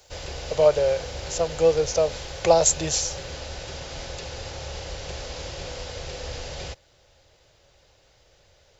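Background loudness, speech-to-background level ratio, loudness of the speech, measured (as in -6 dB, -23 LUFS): -35.0 LUFS, 12.5 dB, -22.5 LUFS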